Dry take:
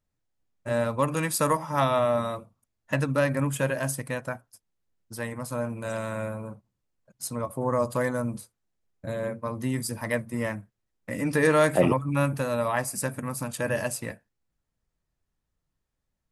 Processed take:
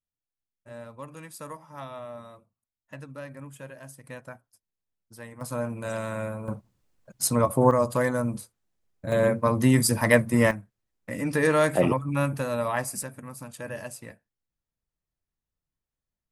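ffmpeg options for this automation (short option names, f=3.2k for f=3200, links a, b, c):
-af "asetnsamples=n=441:p=0,asendcmd='4.04 volume volume -9.5dB;5.41 volume volume 0dB;6.48 volume volume 9dB;7.71 volume volume 2dB;9.12 volume volume 9dB;10.51 volume volume -1dB;13.03 volume volume -8.5dB',volume=-16dB"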